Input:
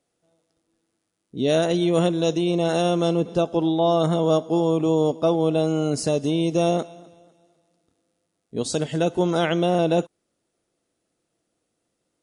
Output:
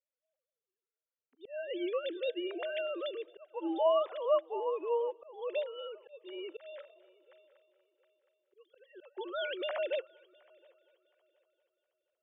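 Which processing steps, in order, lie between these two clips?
formants replaced by sine waves; dynamic bell 1.6 kHz, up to +5 dB, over -35 dBFS, Q 0.91; high-pass 880 Hz 6 dB/octave; on a send: multi-head delay 239 ms, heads first and third, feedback 42%, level -22 dB; on the sum: slow attack 301 ms; upward expansion 1.5:1, over -39 dBFS; trim -5 dB

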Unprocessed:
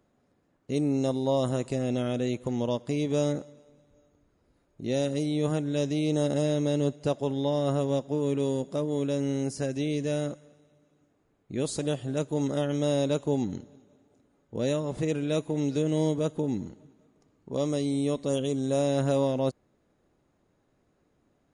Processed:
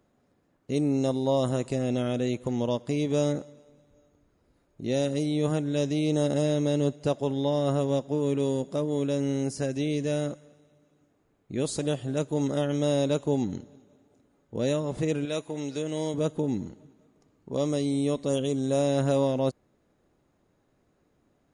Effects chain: 15.25–16.14 s: bass shelf 410 Hz -10 dB; trim +1 dB

